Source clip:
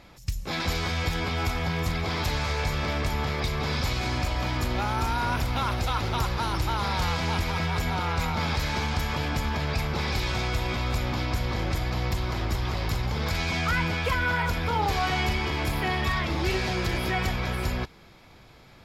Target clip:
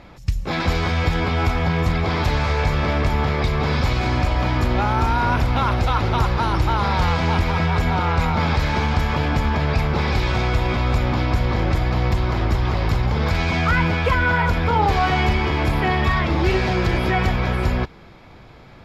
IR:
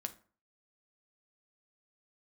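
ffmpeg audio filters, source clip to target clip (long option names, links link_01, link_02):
-af "lowpass=frequency=2000:poles=1,volume=8.5dB"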